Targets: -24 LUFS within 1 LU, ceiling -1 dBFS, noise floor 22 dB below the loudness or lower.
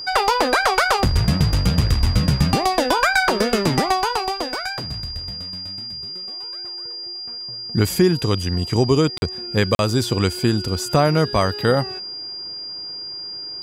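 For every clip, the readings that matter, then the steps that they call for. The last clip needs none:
dropouts 2; longest dropout 41 ms; steady tone 4.8 kHz; tone level -29 dBFS; loudness -20.5 LUFS; peak level -6.0 dBFS; loudness target -24.0 LUFS
-> interpolate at 9.18/9.75 s, 41 ms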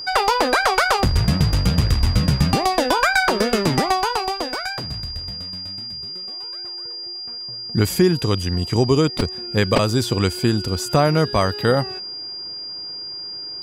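dropouts 0; steady tone 4.8 kHz; tone level -29 dBFS
-> band-stop 4.8 kHz, Q 30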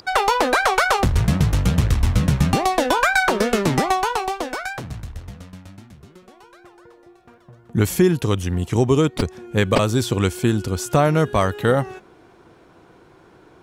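steady tone not found; loudness -19.5 LUFS; peak level -3.0 dBFS; loudness target -24.0 LUFS
-> trim -4.5 dB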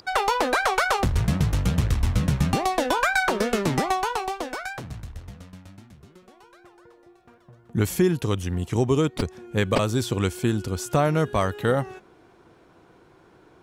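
loudness -24.0 LUFS; peak level -7.5 dBFS; noise floor -56 dBFS

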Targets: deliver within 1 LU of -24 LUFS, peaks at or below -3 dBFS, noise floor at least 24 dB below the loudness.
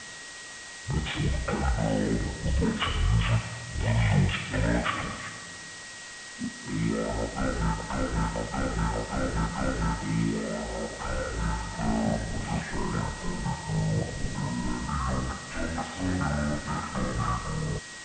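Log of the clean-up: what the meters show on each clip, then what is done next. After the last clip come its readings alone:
steady tone 1.9 kHz; tone level -44 dBFS; noise floor -42 dBFS; noise floor target -54 dBFS; loudness -30.0 LUFS; peak level -13.0 dBFS; loudness target -24.0 LUFS
-> band-stop 1.9 kHz, Q 30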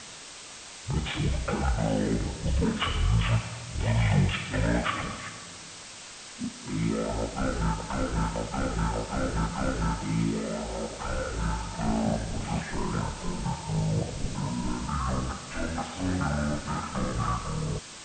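steady tone not found; noise floor -44 dBFS; noise floor target -54 dBFS
-> noise print and reduce 10 dB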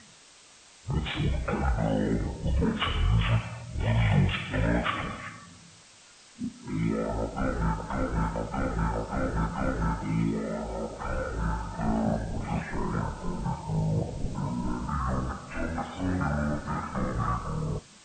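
noise floor -54 dBFS; loudness -30.0 LUFS; peak level -13.0 dBFS; loudness target -24.0 LUFS
-> trim +6 dB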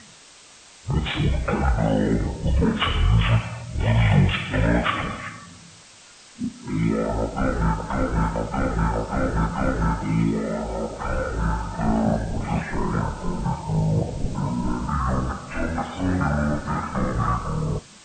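loudness -24.0 LUFS; peak level -7.0 dBFS; noise floor -48 dBFS

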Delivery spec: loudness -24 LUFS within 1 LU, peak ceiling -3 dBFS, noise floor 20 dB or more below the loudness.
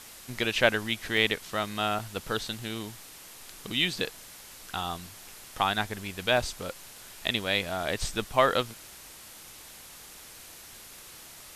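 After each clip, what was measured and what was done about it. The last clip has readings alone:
dropouts 7; longest dropout 1.6 ms; noise floor -48 dBFS; noise floor target -49 dBFS; loudness -29.0 LUFS; peak level -5.5 dBFS; loudness target -24.0 LUFS
-> interpolate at 0.30/1.17/1.99/4.05/4.83/6.37/7.83 s, 1.6 ms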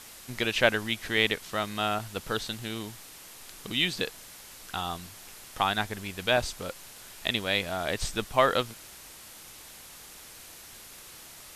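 dropouts 0; noise floor -48 dBFS; noise floor target -49 dBFS
-> noise reduction 6 dB, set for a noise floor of -48 dBFS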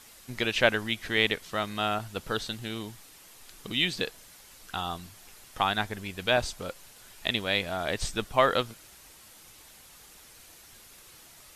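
noise floor -53 dBFS; loudness -29.0 LUFS; peak level -5.5 dBFS; loudness target -24.0 LUFS
-> trim +5 dB; peak limiter -3 dBFS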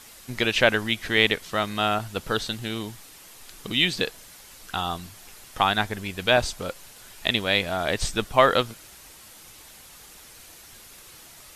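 loudness -24.0 LUFS; peak level -3.0 dBFS; noise floor -48 dBFS

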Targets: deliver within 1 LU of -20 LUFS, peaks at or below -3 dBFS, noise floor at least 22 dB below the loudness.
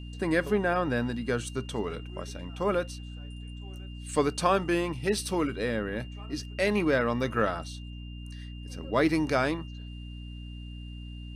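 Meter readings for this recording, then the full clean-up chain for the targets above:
hum 60 Hz; highest harmonic 300 Hz; hum level -38 dBFS; steady tone 2.8 kHz; tone level -51 dBFS; loudness -29.0 LUFS; peak level -10.0 dBFS; loudness target -20.0 LUFS
-> hum notches 60/120/180/240/300 Hz; band-stop 2.8 kHz, Q 30; trim +9 dB; peak limiter -3 dBFS

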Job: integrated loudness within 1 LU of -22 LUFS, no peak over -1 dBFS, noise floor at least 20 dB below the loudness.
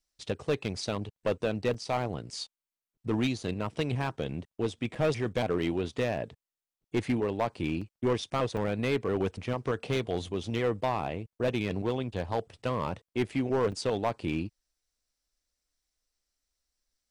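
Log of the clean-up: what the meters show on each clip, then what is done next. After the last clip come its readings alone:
clipped samples 0.9%; clipping level -21.0 dBFS; dropouts 5; longest dropout 5.2 ms; loudness -32.0 LUFS; peak level -21.0 dBFS; loudness target -22.0 LUFS
-> clip repair -21 dBFS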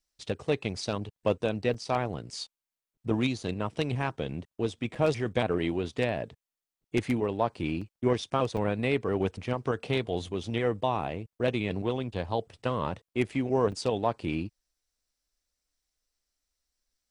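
clipped samples 0.0%; dropouts 5; longest dropout 5.2 ms
-> interpolate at 1.74/4.95/7.81/8.57/13.72 s, 5.2 ms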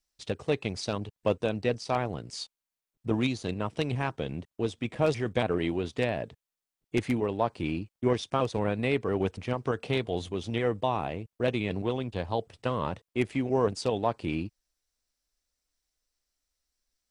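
dropouts 0; loudness -30.5 LUFS; peak level -12.0 dBFS; loudness target -22.0 LUFS
-> trim +8.5 dB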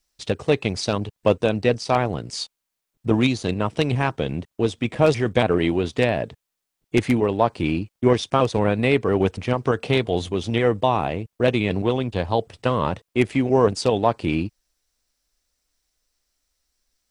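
loudness -22.0 LUFS; peak level -3.5 dBFS; noise floor -81 dBFS

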